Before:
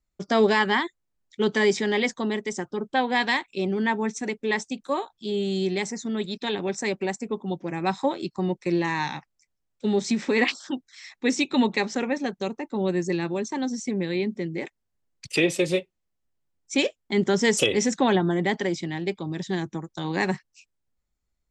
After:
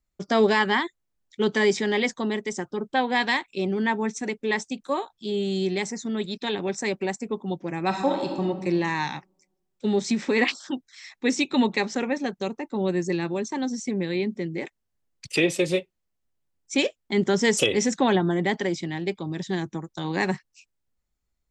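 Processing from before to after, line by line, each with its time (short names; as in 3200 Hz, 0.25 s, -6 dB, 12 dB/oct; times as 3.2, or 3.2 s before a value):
7.86–8.44 reverb throw, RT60 1.3 s, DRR 2.5 dB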